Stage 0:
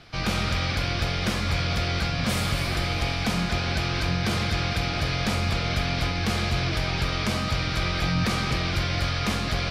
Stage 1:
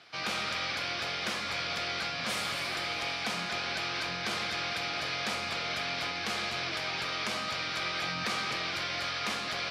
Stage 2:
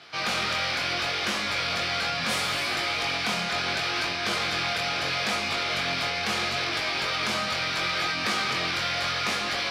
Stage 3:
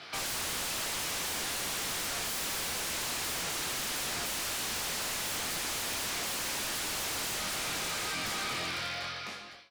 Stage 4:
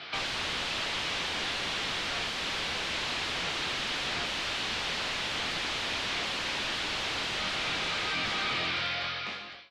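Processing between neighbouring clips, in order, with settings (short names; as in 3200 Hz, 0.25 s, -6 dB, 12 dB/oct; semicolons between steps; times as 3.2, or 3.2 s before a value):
weighting filter A; gain -4.5 dB
chorus 0.73 Hz, delay 19.5 ms, depth 4.9 ms; in parallel at -5 dB: soft clip -36.5 dBFS, distortion -11 dB; on the sum: gain +6.5 dB
ending faded out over 2.57 s; wavefolder -32 dBFS; gain +2 dB
synth low-pass 3500 Hz, resonance Q 1.5; gain +2.5 dB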